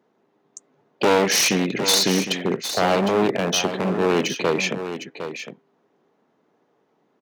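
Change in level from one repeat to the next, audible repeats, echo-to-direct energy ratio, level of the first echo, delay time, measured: repeats not evenly spaced, 1, −10.0 dB, −10.0 dB, 758 ms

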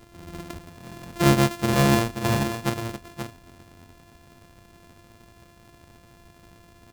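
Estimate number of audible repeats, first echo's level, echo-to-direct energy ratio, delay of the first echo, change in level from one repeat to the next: 1, −8.0 dB, −8.0 dB, 530 ms, repeats not evenly spaced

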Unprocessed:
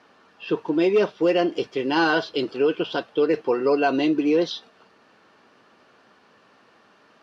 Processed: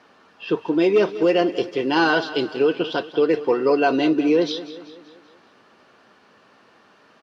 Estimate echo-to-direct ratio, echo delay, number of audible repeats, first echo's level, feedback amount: −13.5 dB, 192 ms, 4, −15.0 dB, 51%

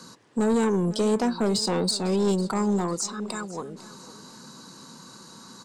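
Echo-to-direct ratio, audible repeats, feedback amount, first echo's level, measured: −17.0 dB, 3, 39%, −17.5 dB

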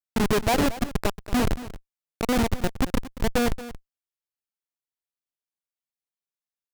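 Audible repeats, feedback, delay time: 1, repeats not evenly spaced, 228 ms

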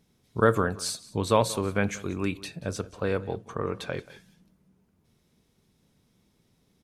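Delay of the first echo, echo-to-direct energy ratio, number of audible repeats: 182 ms, −19.5 dB, 1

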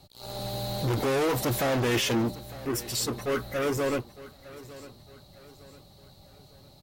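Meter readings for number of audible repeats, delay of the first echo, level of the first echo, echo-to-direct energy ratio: 3, 905 ms, −18.0 dB, −17.0 dB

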